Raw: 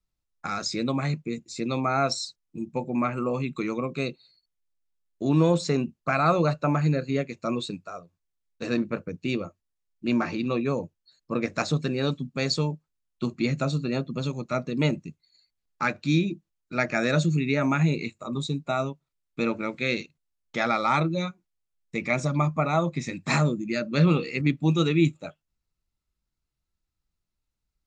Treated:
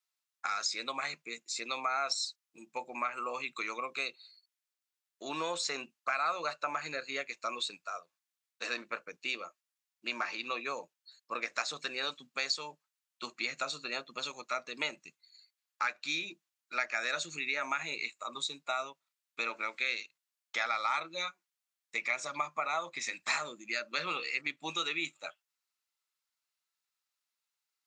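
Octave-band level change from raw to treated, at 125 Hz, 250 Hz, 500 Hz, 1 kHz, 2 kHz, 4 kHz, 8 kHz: −34.5, −24.0, −14.0, −6.0, −2.5, −1.5, −1.5 decibels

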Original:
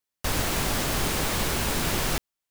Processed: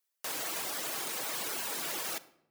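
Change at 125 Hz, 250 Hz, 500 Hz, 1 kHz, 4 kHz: −29.0, −18.0, −12.0, −10.0, −8.5 decibels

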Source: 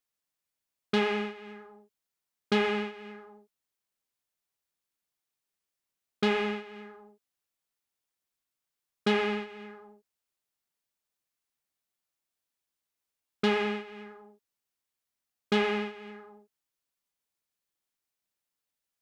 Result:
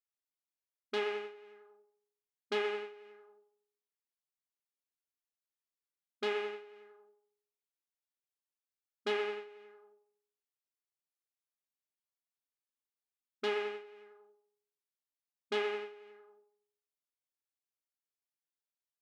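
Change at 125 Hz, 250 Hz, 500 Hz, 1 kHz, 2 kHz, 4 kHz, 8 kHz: below −20 dB, −19.5 dB, −5.5 dB, −8.5 dB, −8.0 dB, −7.5 dB, can't be measured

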